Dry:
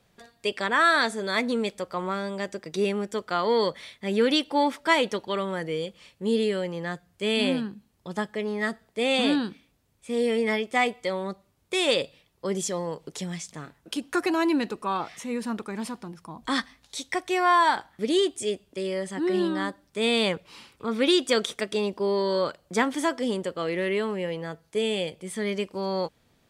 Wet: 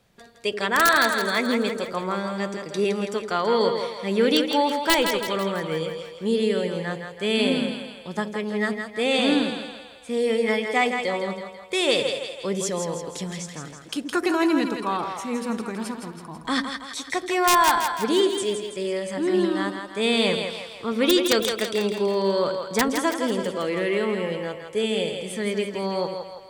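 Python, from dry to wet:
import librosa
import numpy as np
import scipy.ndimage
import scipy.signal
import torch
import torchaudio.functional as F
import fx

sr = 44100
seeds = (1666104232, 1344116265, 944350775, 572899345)

y = (np.mod(10.0 ** (11.5 / 20.0) * x + 1.0, 2.0) - 1.0) / 10.0 ** (11.5 / 20.0)
y = fx.echo_split(y, sr, split_hz=500.0, low_ms=81, high_ms=164, feedback_pct=52, wet_db=-6)
y = F.gain(torch.from_numpy(y), 1.5).numpy()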